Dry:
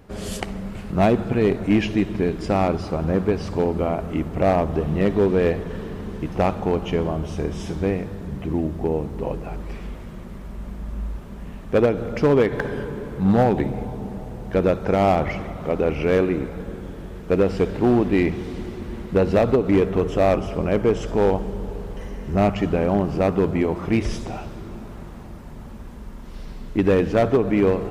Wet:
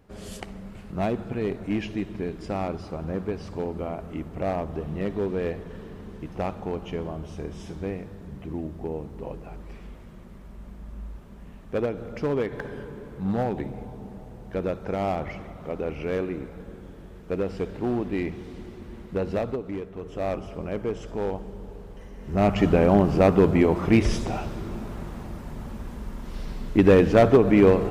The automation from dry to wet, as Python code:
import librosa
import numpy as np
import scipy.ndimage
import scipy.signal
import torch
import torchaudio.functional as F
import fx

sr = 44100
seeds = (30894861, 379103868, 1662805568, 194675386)

y = fx.gain(x, sr, db=fx.line((19.37, -9.0), (19.91, -18.0), (20.27, -10.0), (22.13, -10.0), (22.61, 2.0)))